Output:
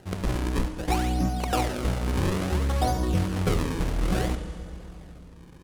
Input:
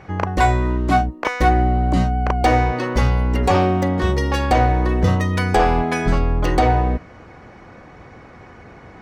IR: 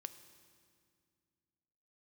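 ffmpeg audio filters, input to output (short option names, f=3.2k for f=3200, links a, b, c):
-filter_complex "[0:a]highshelf=f=2.3k:g=-12,acrusher=samples=37:mix=1:aa=0.000001:lfo=1:lforange=59.2:lforate=0.37,asplit=2[a][b];[b]adelay=110,highpass=300,lowpass=3.4k,asoftclip=type=hard:threshold=-15.5dB,volume=-14dB[c];[a][c]amix=inputs=2:normalize=0[d];[1:a]atrim=start_sample=2205,asetrate=23373,aresample=44100[e];[d][e]afir=irnorm=-1:irlink=0,atempo=1.6,volume=-6.5dB"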